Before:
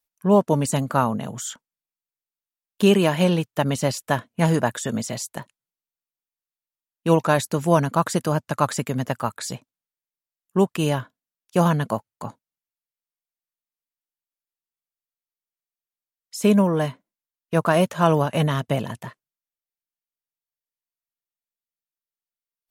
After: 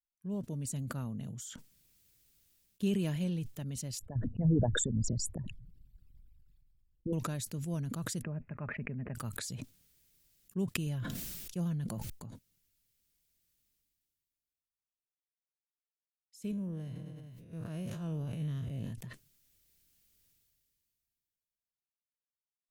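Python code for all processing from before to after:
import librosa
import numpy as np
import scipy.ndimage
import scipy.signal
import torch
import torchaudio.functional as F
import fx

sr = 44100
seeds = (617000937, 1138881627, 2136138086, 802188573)

y = fx.chain(x, sr, fx.envelope_sharpen(power=3.0),
    fx.riaa(side='playback'),
    fx.notch(hz=6100.0, q=5.9), at=(3.99, 7.13))
y = fx.chain(y, sr, fx.cheby_ripple(hz=2600.0, ripple_db=3),
    fx.comb(ms=4.9, depth=0.31), at=(8.22, 9.15))
y = fx.chain(y, sr, fx.comb(ms=5.7, depth=0.31),
    fx.sustainer(db_per_s=69.0), at=(10.86, 12.1))
y = fx.chain(y, sr, fx.spec_blur(span_ms=100.0),
    fx.echo_feedback(ms=103, feedback_pct=52, wet_db=-20),
    fx.sustainer(db_per_s=42.0), at=(16.51, 18.93))
y = fx.rider(y, sr, range_db=10, speed_s=2.0)
y = fx.tone_stack(y, sr, knobs='10-0-1')
y = fx.sustainer(y, sr, db_per_s=22.0)
y = y * 10.0 ** (-1.5 / 20.0)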